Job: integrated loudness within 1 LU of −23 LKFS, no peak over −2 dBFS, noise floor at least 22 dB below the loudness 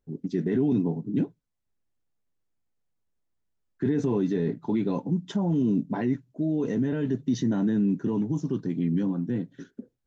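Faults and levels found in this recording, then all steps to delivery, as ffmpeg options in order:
integrated loudness −27.0 LKFS; sample peak −15.0 dBFS; target loudness −23.0 LKFS
→ -af "volume=4dB"

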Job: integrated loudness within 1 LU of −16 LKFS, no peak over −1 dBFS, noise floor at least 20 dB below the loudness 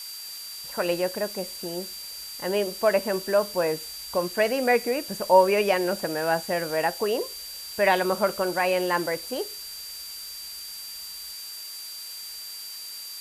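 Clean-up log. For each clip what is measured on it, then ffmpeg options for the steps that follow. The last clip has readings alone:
interfering tone 4,700 Hz; level of the tone −38 dBFS; background noise floor −39 dBFS; target noise floor −47 dBFS; integrated loudness −26.5 LKFS; sample peak −6.0 dBFS; target loudness −16.0 LKFS
→ -af "bandreject=frequency=4700:width=30"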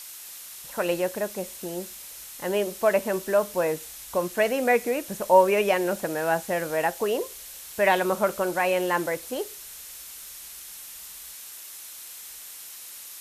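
interfering tone none found; background noise floor −42 dBFS; target noise floor −46 dBFS
→ -af "afftdn=noise_reduction=6:noise_floor=-42"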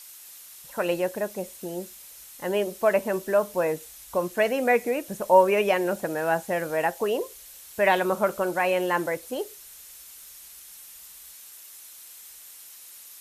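background noise floor −47 dBFS; integrated loudness −25.5 LKFS; sample peak −6.0 dBFS; target loudness −16.0 LKFS
→ -af "volume=9.5dB,alimiter=limit=-1dB:level=0:latency=1"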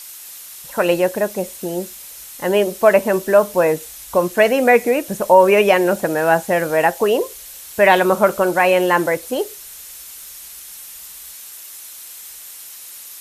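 integrated loudness −16.5 LKFS; sample peak −1.0 dBFS; background noise floor −37 dBFS

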